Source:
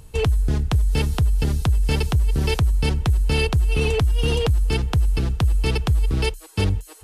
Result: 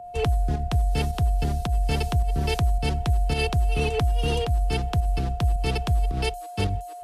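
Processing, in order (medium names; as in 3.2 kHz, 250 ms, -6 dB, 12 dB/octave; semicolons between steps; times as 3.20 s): volume shaper 108 bpm, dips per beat 1, -8 dB, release 104 ms; whistle 710 Hz -29 dBFS; three bands expanded up and down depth 40%; trim -3.5 dB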